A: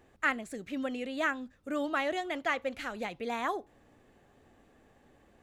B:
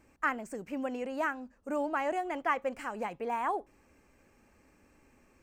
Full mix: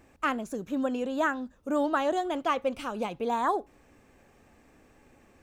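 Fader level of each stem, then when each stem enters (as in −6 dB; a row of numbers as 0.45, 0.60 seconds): 0.0, +2.0 decibels; 0.00, 0.00 seconds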